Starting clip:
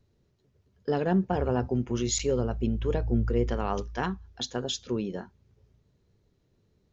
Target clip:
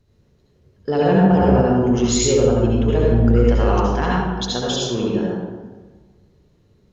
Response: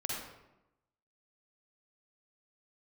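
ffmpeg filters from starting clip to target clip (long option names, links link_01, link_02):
-filter_complex "[1:a]atrim=start_sample=2205,asetrate=29547,aresample=44100[link_01];[0:a][link_01]afir=irnorm=-1:irlink=0,volume=5dB"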